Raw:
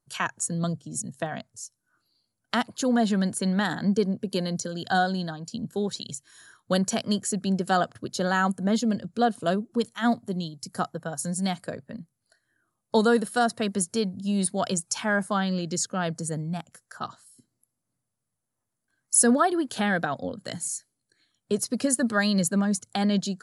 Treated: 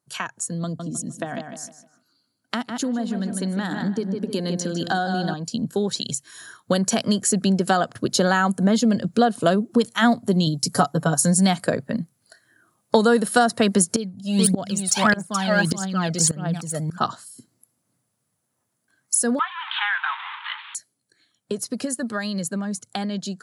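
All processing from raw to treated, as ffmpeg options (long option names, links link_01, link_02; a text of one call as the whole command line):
ffmpeg -i in.wav -filter_complex "[0:a]asettb=1/sr,asplit=3[link_01][link_02][link_03];[link_01]atrim=end=0.644[link_04];[link_02]atrim=start=0.64:end=5.34,asetpts=PTS-STARTPTS,afade=type=in:duration=0.004:curve=qsin,afade=type=out:start_time=4.696:duration=0.004:curve=qsin,equalizer=frequency=270:width_type=o:width=0.63:gain=7,asplit=2[link_05][link_06];[link_06]adelay=153,lowpass=frequency=3700:poles=1,volume=-8dB,asplit=2[link_07][link_08];[link_08]adelay=153,lowpass=frequency=3700:poles=1,volume=0.34,asplit=2[link_09][link_10];[link_10]adelay=153,lowpass=frequency=3700:poles=1,volume=0.34,asplit=2[link_11][link_12];[link_12]adelay=153,lowpass=frequency=3700:poles=1,volume=0.34[link_13];[link_05][link_07][link_09][link_11][link_13]amix=inputs=5:normalize=0,atrim=end_sample=207270[link_14];[link_03]atrim=start=5.336[link_15];[link_04][link_14]acrossfade=duration=0.004:curve1=hsin:curve2=qsin[link_16];[link_16][link_15]acrossfade=duration=0.004:curve1=qsin:curve2=hsin,asettb=1/sr,asplit=3[link_17][link_18][link_19];[link_17]atrim=end=10.464[link_20];[link_18]atrim=start=10.46:end=11.14,asetpts=PTS-STARTPTS,afade=type=in:duration=0.004:curve=qsin,afade=type=out:start_time=0.676:duration=0.004:curve=qsin,agate=range=-33dB:threshold=-53dB:ratio=3:release=100:detection=peak,equalizer=frequency=1900:width=1.7:gain=-4.5,aecho=1:1:7:0.84,atrim=end_sample=29988[link_21];[link_19]atrim=start=11.136[link_22];[link_20][link_21]acrossfade=duration=0.004:curve1=hsin:curve2=qsin[link_23];[link_23][link_22]acrossfade=duration=0.004:curve1=qsin:curve2=hsin,asettb=1/sr,asplit=3[link_24][link_25][link_26];[link_24]atrim=end=13.964[link_27];[link_25]atrim=start=13.96:end=16.98,asetpts=PTS-STARTPTS,afade=type=in:duration=0.004:curve=qsin,afade=type=out:start_time=3.016:duration=0.004:curve=qsin,aecho=1:1:428:0.668,atrim=end_sample=133182,aphaser=in_gain=1:out_gain=1:delay=1.6:decay=0.64:speed=1.6:type=triangular,aeval=exprs='val(0)*pow(10,-23*if(lt(mod(-1.7*n/s,1),2*abs(-1.7)/1000),1-mod(-1.7*n/s,1)/(2*abs(-1.7)/1000),(mod(-1.7*n/s,1)-2*abs(-1.7)/1000)/(1-2*abs(-1.7)/1000))/20)':channel_layout=same[link_28];[link_26]atrim=start=16.976[link_29];[link_27][link_28]acrossfade=duration=0.004:curve1=hsin:curve2=qsin[link_30];[link_30][link_29]acrossfade=duration=0.004:curve1=qsin:curve2=hsin,asettb=1/sr,asplit=3[link_31][link_32][link_33];[link_31]atrim=end=19.394[link_34];[link_32]atrim=start=19.39:end=20.75,asetpts=PTS-STARTPTS,afade=type=in:duration=0.004:curve=qsin,afade=type=out:start_time=1.356:duration=0.004:curve=qsin,aeval=exprs='val(0)+0.5*0.0501*sgn(val(0))':channel_layout=same,asuperpass=centerf=1800:order=20:qfactor=0.65,asplit=2[link_35][link_36];[link_36]adelay=23,volume=-11.5dB[link_37];[link_35][link_37]amix=inputs=2:normalize=0,atrim=end_sample=59976[link_38];[link_33]atrim=start=20.746[link_39];[link_34][link_38]acrossfade=duration=0.004:curve1=hsin:curve2=qsin[link_40];[link_40][link_39]acrossfade=duration=0.004:curve1=qsin:curve2=hsin,acompressor=threshold=-27dB:ratio=6,highpass=110,dynaudnorm=framelen=540:gausssize=21:maxgain=11dB,volume=3dB" out.wav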